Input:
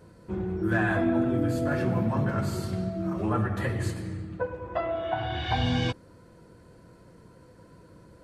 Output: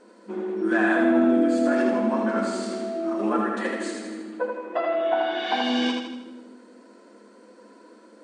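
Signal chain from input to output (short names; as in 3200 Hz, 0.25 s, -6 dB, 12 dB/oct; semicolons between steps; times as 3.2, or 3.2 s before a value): on a send: split-band echo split 320 Hz, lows 0.201 s, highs 80 ms, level -4 dB; on the sum: FFT band-pass 200–9400 Hz; gain +3 dB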